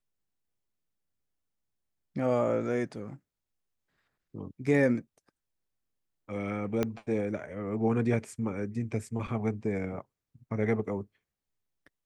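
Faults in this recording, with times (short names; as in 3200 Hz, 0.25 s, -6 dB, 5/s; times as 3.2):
6.83 pop -15 dBFS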